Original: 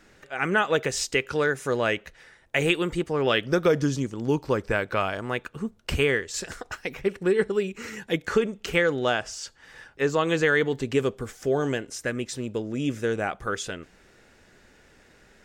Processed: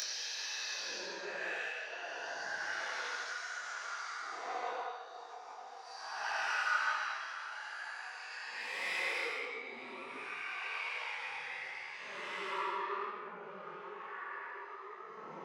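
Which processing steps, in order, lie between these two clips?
nonlinear frequency compression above 3700 Hz 1.5:1; in parallel at -1 dB: compressor, threshold -37 dBFS, peak gain reduction 19.5 dB; on the sum: treble ducked by the level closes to 1100 Hz, closed at -21 dBFS; soft clip -25.5 dBFS, distortion -8 dB; high-pass sweep 360 Hz -> 1200 Hz, 4.53–7.71; on a send: reverse echo 0.145 s -22.5 dB; on the sum: Paulstretch 18×, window 0.05 s, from 6.36; upward compressor, threshold -33 dBFS; dynamic EQ 660 Hz, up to -4 dB, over -44 dBFS, Q 1.2; detuned doubles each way 44 cents

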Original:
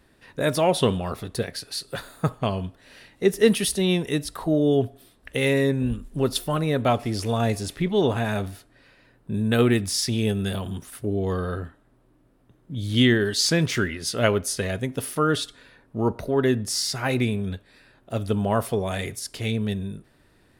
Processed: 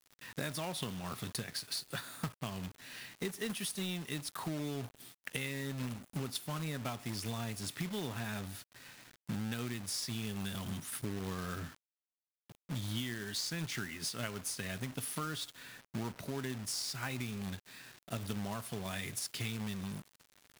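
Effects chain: HPF 110 Hz 24 dB/oct; bell 490 Hz -11.5 dB 1.5 oct; compressor 10:1, threshold -37 dBFS, peak gain reduction 21 dB; companded quantiser 4-bit; gain +1 dB

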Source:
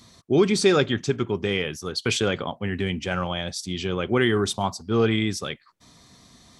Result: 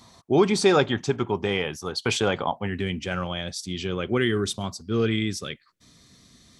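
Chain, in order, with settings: bell 850 Hz +10.5 dB 0.75 oct, from 2.67 s -3.5 dB, from 4.17 s -11.5 dB; gain -1.5 dB

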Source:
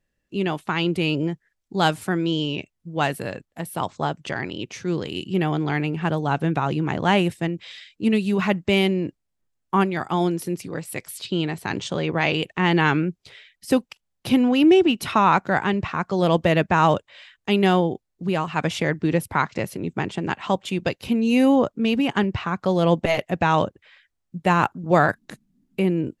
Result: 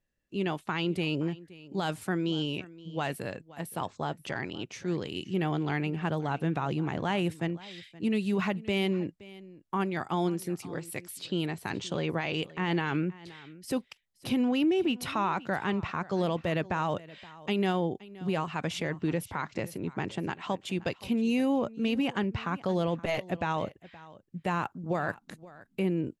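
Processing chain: limiter -13.5 dBFS, peak gain reduction 9.5 dB; on a send: echo 0.522 s -19.5 dB; on the sum: gain -6.5 dB

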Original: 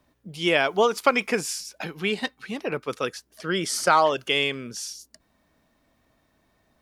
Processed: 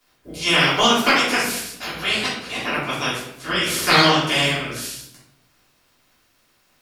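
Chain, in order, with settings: spectral limiter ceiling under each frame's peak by 24 dB; shoebox room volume 190 m³, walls mixed, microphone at 3.2 m; gain -5 dB

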